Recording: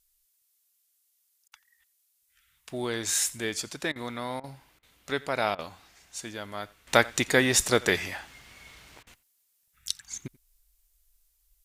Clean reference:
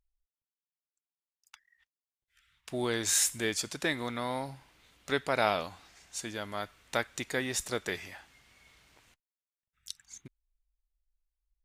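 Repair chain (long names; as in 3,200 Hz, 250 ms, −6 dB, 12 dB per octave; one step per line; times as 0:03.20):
repair the gap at 0:01.48/0:03.92/0:04.40/0:04.79/0:05.55/0:09.03, 37 ms
downward expander −64 dBFS, range −21 dB
echo removal 87 ms −23.5 dB
level 0 dB, from 0:06.87 −10.5 dB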